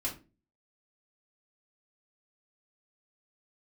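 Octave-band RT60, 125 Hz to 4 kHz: 0.50 s, 0.45 s, 0.40 s, 0.25 s, 0.25 s, 0.20 s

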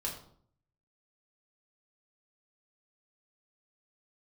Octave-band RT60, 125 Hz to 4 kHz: 0.90 s, 0.75 s, 0.60 s, 0.55 s, 0.40 s, 0.40 s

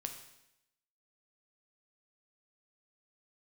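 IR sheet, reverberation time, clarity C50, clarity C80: 0.85 s, 8.0 dB, 10.5 dB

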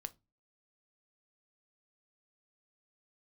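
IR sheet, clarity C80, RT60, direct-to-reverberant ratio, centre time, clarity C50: 32.0 dB, 0.25 s, 11.5 dB, 2 ms, 23.5 dB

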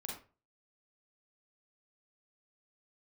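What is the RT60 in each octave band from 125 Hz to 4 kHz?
0.45 s, 0.35 s, 0.35 s, 0.35 s, 0.30 s, 0.25 s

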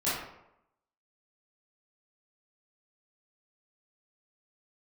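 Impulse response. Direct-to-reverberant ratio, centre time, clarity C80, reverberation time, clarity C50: -12.5 dB, 66 ms, 4.0 dB, 0.85 s, 0.0 dB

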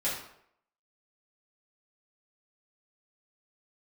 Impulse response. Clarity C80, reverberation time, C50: 7.0 dB, 0.70 s, 3.0 dB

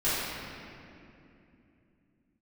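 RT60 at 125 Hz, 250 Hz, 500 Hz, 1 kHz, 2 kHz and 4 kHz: 3.9 s, 4.3 s, 3.1 s, 2.4 s, 2.5 s, 1.7 s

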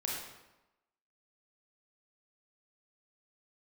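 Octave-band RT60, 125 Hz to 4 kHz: 0.95 s, 1.0 s, 1.0 s, 1.0 s, 0.85 s, 0.75 s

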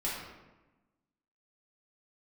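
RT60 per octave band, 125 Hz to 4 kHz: 1.3 s, 1.4 s, 1.1 s, 1.1 s, 0.95 s, 0.70 s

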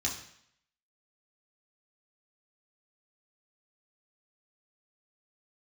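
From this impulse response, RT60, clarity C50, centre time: 0.65 s, 7.0 dB, 28 ms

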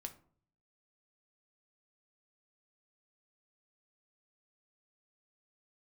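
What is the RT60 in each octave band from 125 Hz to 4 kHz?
0.85 s, 0.70 s, 0.55 s, 0.50 s, 0.35 s, 0.25 s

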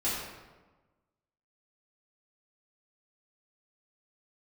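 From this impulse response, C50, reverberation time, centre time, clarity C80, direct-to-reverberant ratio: 0.0 dB, 1.2 s, 79 ms, 2.0 dB, -10.5 dB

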